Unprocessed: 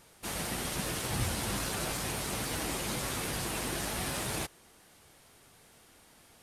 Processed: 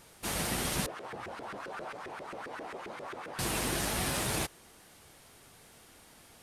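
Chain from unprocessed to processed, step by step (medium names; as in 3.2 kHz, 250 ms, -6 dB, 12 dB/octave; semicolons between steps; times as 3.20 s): 0.86–3.39 s: LFO band-pass saw up 7.5 Hz 380–1700 Hz; trim +2.5 dB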